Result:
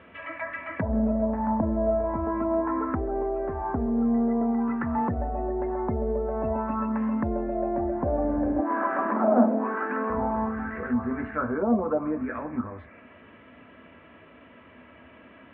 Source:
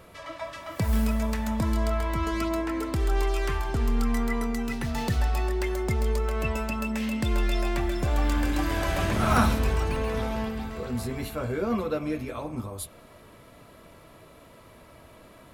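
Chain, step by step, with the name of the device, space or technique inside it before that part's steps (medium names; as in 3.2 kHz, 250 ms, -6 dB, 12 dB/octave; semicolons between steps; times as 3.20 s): 8.59–10.10 s: elliptic high-pass 210 Hz; envelope filter bass rig (touch-sensitive low-pass 620–3300 Hz down, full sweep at -22 dBFS; cabinet simulation 63–2400 Hz, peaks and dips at 130 Hz -9 dB, 250 Hz +10 dB, 1.7 kHz +6 dB); trim -2 dB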